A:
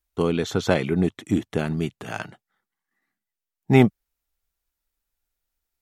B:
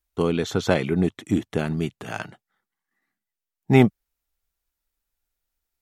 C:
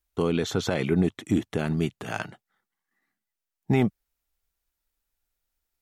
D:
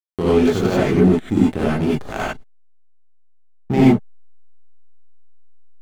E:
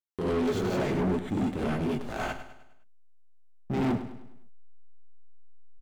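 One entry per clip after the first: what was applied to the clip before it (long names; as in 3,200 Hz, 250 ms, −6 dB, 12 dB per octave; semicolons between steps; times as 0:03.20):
no processing that can be heard
brickwall limiter −12.5 dBFS, peak gain reduction 9.5 dB
slack as between gear wheels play −24.5 dBFS; reverb whose tail is shaped and stops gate 120 ms rising, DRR −7 dB; level +2.5 dB
soft clipping −17.5 dBFS, distortion −8 dB; on a send: repeating echo 102 ms, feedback 46%, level −11.5 dB; on the sum: level −6.5 dB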